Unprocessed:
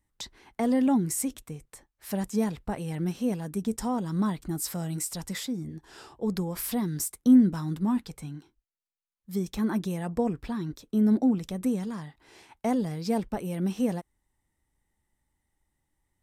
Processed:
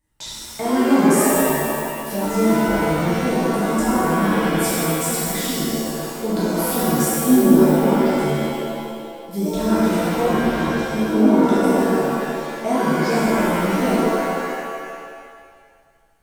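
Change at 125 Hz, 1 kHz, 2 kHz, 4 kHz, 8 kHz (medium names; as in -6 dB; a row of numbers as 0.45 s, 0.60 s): +8.0 dB, +16.0 dB, +20.0 dB, +13.5 dB, +10.5 dB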